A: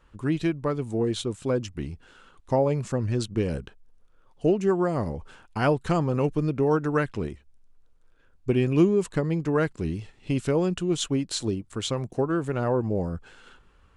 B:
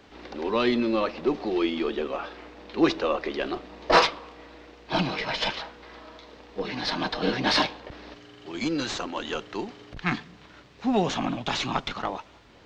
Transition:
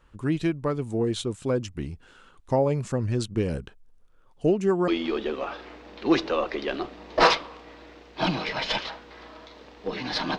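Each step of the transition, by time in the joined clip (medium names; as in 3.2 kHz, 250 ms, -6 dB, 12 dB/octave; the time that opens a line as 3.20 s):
A
4.88 s: go over to B from 1.60 s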